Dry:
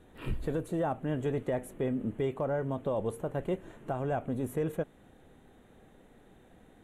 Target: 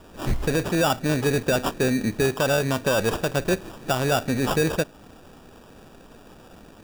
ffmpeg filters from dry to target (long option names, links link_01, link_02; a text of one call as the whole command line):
ffmpeg -i in.wav -af "crystalizer=i=4.5:c=0,acrusher=samples=21:mix=1:aa=0.000001,volume=9dB" out.wav